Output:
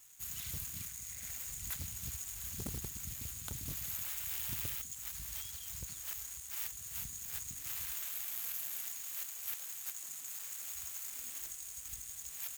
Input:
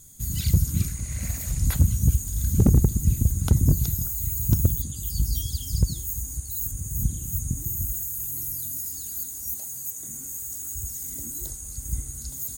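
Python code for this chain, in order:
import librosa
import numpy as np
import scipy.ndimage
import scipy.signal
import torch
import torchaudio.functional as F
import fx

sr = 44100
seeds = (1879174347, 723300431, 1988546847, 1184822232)

y = scipy.ndimage.median_filter(x, 9, mode='constant')
y = librosa.effects.preemphasis(y, coef=0.97, zi=[0.0])
y = y * 10.0 ** (2.0 / 20.0)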